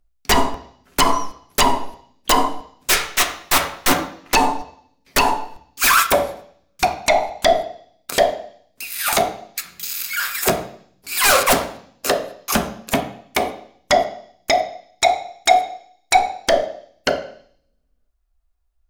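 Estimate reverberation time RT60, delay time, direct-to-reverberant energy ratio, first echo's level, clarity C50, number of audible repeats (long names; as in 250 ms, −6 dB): 0.55 s, no echo audible, 2.0 dB, no echo audible, 10.0 dB, no echo audible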